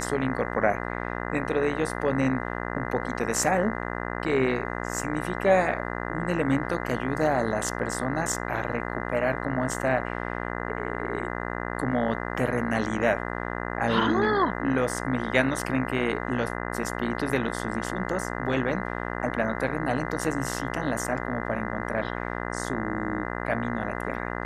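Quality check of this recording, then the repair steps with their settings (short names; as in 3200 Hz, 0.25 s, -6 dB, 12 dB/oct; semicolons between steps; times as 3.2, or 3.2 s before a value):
buzz 60 Hz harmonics 34 -32 dBFS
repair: de-hum 60 Hz, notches 34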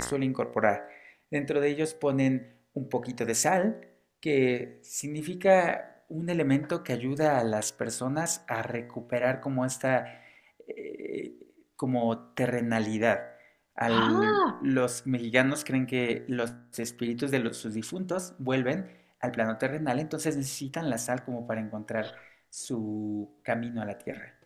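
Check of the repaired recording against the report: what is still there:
none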